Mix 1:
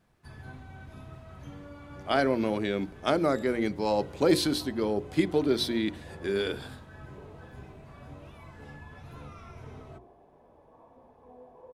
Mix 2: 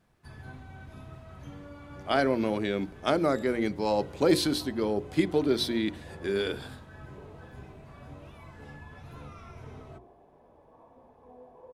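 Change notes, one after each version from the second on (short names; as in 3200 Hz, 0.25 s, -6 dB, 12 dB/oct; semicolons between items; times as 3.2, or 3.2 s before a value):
none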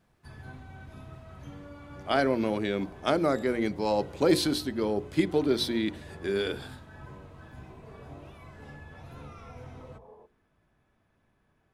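second sound: entry -1.80 s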